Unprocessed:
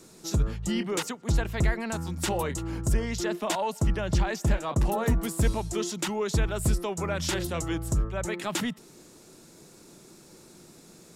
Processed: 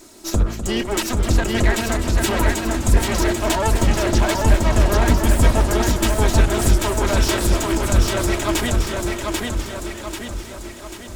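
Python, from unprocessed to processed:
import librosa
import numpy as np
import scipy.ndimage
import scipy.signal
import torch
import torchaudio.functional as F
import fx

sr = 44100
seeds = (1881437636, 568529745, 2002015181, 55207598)

p1 = fx.lower_of_two(x, sr, delay_ms=3.1)
p2 = p1 + fx.echo_feedback(p1, sr, ms=790, feedback_pct=50, wet_db=-3, dry=0)
p3 = fx.echo_warbled(p2, sr, ms=255, feedback_pct=68, rate_hz=2.8, cents=103, wet_db=-11.0)
y = p3 * librosa.db_to_amplitude(8.5)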